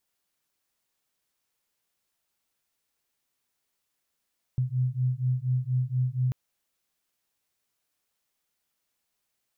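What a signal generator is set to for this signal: beating tones 125 Hz, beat 4.2 Hz, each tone -27 dBFS 1.74 s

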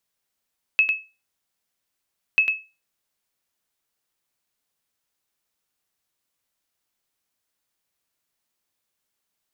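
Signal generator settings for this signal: sonar ping 2.59 kHz, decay 0.28 s, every 1.59 s, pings 2, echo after 0.10 s, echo -6.5 dB -9.5 dBFS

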